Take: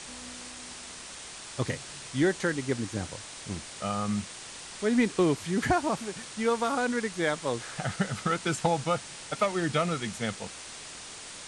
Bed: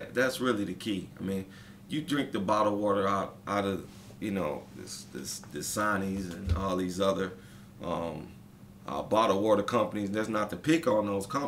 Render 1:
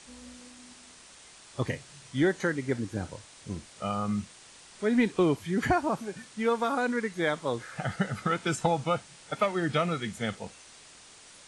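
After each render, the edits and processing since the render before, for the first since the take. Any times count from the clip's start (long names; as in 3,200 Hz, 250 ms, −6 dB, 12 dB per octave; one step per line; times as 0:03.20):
noise reduction from a noise print 9 dB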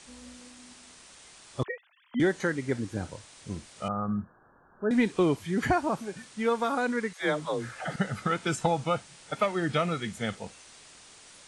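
0:01.63–0:02.20: three sine waves on the formant tracks
0:03.88–0:04.91: Chebyshev low-pass filter 1,700 Hz, order 10
0:07.13–0:07.96: all-pass dispersion lows, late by 112 ms, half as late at 350 Hz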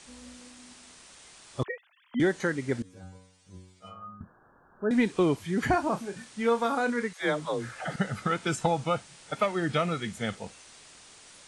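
0:02.82–0:04.21: stiff-string resonator 91 Hz, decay 0.72 s, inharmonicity 0.002
0:05.70–0:07.03: double-tracking delay 30 ms −10 dB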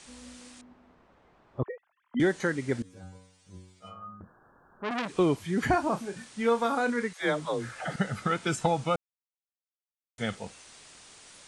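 0:00.61–0:02.17: low-pass filter 1,000 Hz
0:04.20–0:05.11: saturating transformer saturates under 2,400 Hz
0:08.96–0:10.18: silence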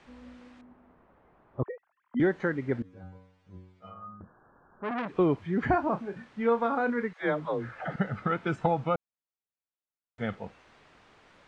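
low-pass filter 1,900 Hz 12 dB per octave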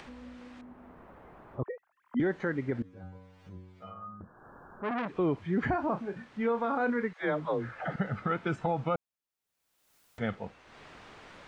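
upward compression, threshold −42 dBFS
brickwall limiter −20.5 dBFS, peak gain reduction 6 dB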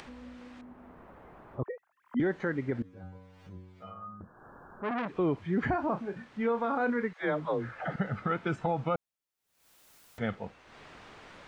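upward compression, threshold −50 dBFS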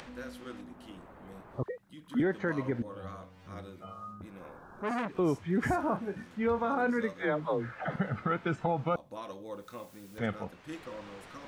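mix in bed −17.5 dB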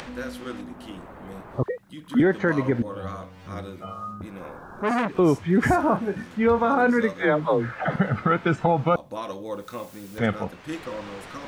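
level +9.5 dB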